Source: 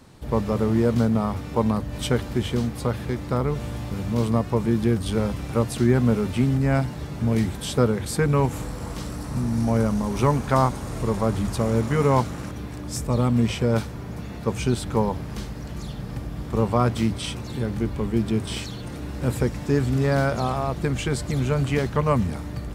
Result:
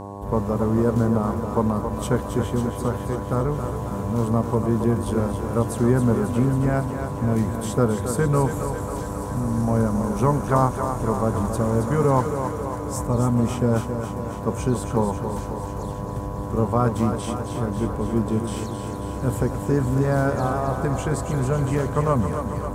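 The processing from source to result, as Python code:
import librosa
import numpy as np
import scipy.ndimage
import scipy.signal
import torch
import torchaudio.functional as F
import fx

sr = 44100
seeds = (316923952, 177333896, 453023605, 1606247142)

y = fx.band_shelf(x, sr, hz=3200.0, db=-9.5, octaves=1.7)
y = fx.dmg_buzz(y, sr, base_hz=100.0, harmonics=11, level_db=-35.0, tilt_db=-2, odd_only=False)
y = fx.echo_thinned(y, sr, ms=272, feedback_pct=68, hz=210.0, wet_db=-7)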